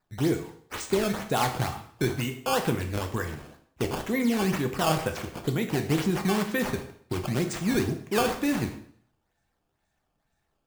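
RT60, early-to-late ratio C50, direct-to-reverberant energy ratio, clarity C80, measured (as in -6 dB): 0.60 s, 10.0 dB, 5.0 dB, 13.0 dB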